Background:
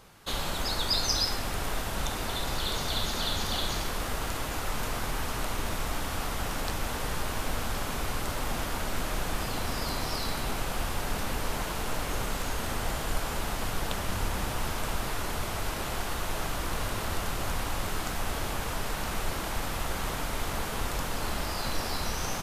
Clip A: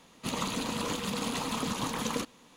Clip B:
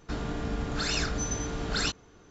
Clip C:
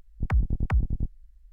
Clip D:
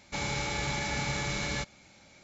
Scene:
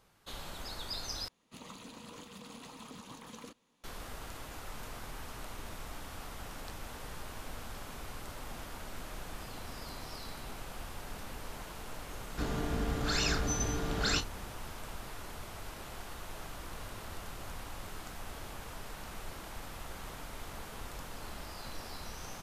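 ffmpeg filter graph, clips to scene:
-filter_complex "[0:a]volume=0.237[s0];[2:a]asplit=2[s1][s2];[s2]adelay=33,volume=0.251[s3];[s1][s3]amix=inputs=2:normalize=0[s4];[s0]asplit=2[s5][s6];[s5]atrim=end=1.284[s7];[1:a]atrim=end=2.56,asetpts=PTS-STARTPTS,volume=0.15[s8];[s6]atrim=start=3.836[s9];[s4]atrim=end=2.3,asetpts=PTS-STARTPTS,volume=0.794,afade=t=in:d=0.004:c=hsin,afade=t=out:st=2.296:d=0.004:c=hsin,adelay=12290[s10];[s7][s8]acrossfade=d=0.004:c1=hsin:c2=hsin[s11];[s11][s9]acrossfade=d=0.004:c1=hsin:c2=hsin[s12];[s12][s10]amix=inputs=2:normalize=0"

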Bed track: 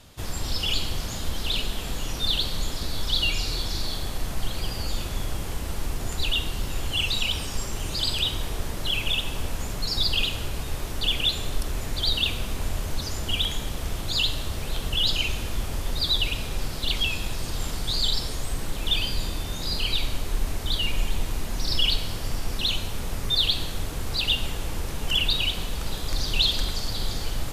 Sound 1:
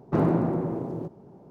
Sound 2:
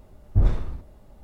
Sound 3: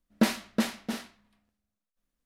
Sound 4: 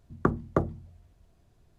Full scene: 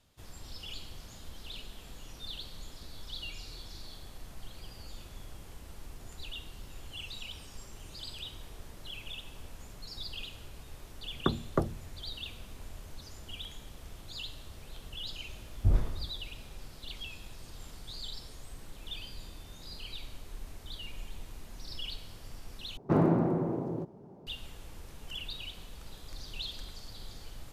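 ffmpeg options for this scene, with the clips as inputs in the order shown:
-filter_complex "[0:a]volume=0.133[s0];[4:a]dynaudnorm=f=140:g=3:m=3.76[s1];[s0]asplit=2[s2][s3];[s2]atrim=end=22.774[s4];[1:a]atrim=end=1.5,asetpts=PTS-STARTPTS,volume=0.75[s5];[s3]atrim=start=24.266[s6];[s1]atrim=end=1.78,asetpts=PTS-STARTPTS,volume=0.316,afade=t=in:d=0.004:c=hsin,afade=t=out:st=1.776:d=0.004:c=hsin,adelay=11010[s7];[2:a]atrim=end=1.23,asetpts=PTS-STARTPTS,volume=0.473,afade=t=in:d=0.004:c=hsin,afade=t=out:st=1.226:d=0.004:c=hsin,adelay=15290[s8];[s4][s5]acrossfade=d=0.004:c1=hsin:c2=hsin[s9];[s9][s6]acrossfade=d=0.004:c1=hsin:c2=hsin[s10];[s10][s7][s8]amix=inputs=3:normalize=0"

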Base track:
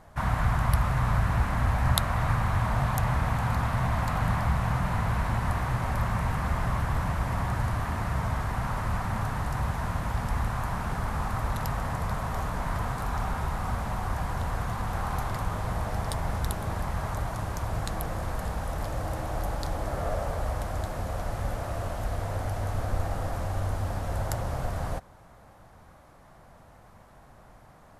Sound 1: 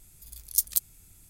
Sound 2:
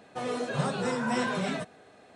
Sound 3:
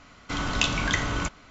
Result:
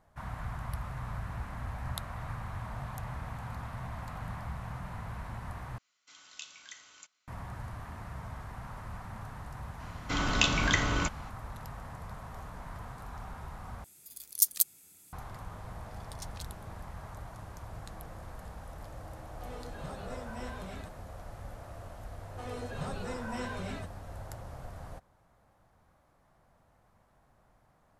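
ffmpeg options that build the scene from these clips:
-filter_complex "[3:a]asplit=2[s0][s1];[1:a]asplit=2[s2][s3];[2:a]asplit=2[s4][s5];[0:a]volume=0.211[s6];[s0]aderivative[s7];[s2]highpass=230[s8];[s3]lowpass=2800[s9];[s5]bandreject=f=3400:w=25[s10];[s6]asplit=3[s11][s12][s13];[s11]atrim=end=5.784[s14];[s7]atrim=end=1.5,asetpts=PTS-STARTPTS,volume=0.2[s15];[s12]atrim=start=7.276:end=13.844[s16];[s8]atrim=end=1.29,asetpts=PTS-STARTPTS,volume=0.944[s17];[s13]atrim=start=15.126[s18];[s1]atrim=end=1.5,asetpts=PTS-STARTPTS,volume=0.841,afade=t=in:d=0.004:c=hsin,afade=t=out:st=1.496:d=0.004:c=hsin,adelay=9800[s19];[s9]atrim=end=1.29,asetpts=PTS-STARTPTS,volume=0.891,afade=t=in:d=0.004:c=hsin,afade=t=out:st=1.286:d=0.004:c=hsin,adelay=15640[s20];[s4]atrim=end=2.15,asetpts=PTS-STARTPTS,volume=0.178,afade=t=in:d=0.004:c=hsin,afade=t=out:st=2.146:d=0.004:c=hsin,adelay=19250[s21];[s10]atrim=end=2.15,asetpts=PTS-STARTPTS,volume=0.335,afade=t=in:d=0.004:c=hsin,afade=t=out:st=2.146:d=0.004:c=hsin,adelay=22220[s22];[s14][s15]acrossfade=d=0.004:c1=hsin:c2=hsin[s23];[s23][s16]acrossfade=d=0.004:c1=hsin:c2=hsin[s24];[s24][s17]acrossfade=d=0.004:c1=hsin:c2=hsin[s25];[s25][s18]acrossfade=d=0.004:c1=hsin:c2=hsin[s26];[s26][s19][s20][s21][s22]amix=inputs=5:normalize=0"

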